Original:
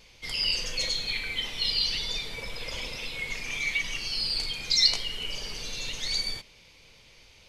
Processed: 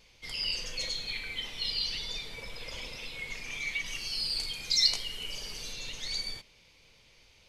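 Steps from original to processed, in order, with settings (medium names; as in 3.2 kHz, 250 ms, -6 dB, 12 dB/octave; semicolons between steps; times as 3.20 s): 3.86–5.73 s: peaking EQ 12 kHz +7.5 dB 1.5 oct; trim -5.5 dB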